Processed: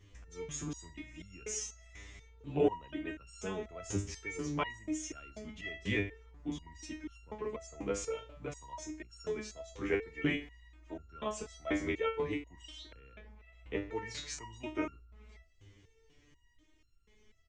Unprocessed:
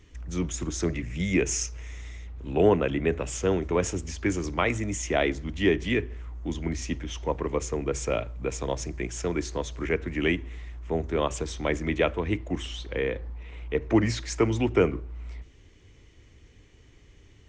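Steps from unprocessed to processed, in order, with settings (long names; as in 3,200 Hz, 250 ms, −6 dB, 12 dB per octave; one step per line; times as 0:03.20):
far-end echo of a speakerphone 150 ms, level −23 dB
step-sequenced resonator 4.1 Hz 100–1,400 Hz
level +4.5 dB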